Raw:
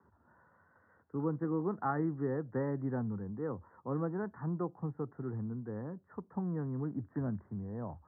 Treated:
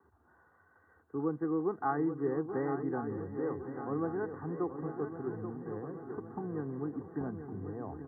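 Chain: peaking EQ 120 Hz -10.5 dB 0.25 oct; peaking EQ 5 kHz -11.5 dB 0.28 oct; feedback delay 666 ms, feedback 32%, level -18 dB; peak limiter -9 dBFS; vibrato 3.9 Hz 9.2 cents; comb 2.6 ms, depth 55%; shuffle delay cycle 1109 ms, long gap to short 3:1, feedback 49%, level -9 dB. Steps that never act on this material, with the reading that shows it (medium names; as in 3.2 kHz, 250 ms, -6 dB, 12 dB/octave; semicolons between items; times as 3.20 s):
peaking EQ 5 kHz: input has nothing above 1.8 kHz; peak limiter -9 dBFS: peak at its input -21.0 dBFS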